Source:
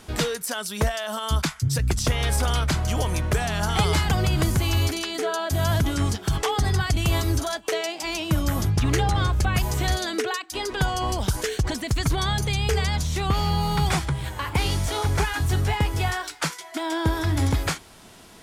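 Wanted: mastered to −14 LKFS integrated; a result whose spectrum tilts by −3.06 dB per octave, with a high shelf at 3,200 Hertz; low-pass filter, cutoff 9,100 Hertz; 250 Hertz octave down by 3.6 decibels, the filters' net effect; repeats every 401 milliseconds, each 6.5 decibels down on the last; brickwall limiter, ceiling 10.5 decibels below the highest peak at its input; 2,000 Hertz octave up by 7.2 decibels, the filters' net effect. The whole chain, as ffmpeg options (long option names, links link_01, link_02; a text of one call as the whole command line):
ffmpeg -i in.wav -af "lowpass=9100,equalizer=frequency=250:width_type=o:gain=-6,equalizer=frequency=2000:width_type=o:gain=6.5,highshelf=frequency=3200:gain=8,alimiter=limit=-17dB:level=0:latency=1,aecho=1:1:401|802|1203|1604|2005|2406:0.473|0.222|0.105|0.0491|0.0231|0.0109,volume=11dB" out.wav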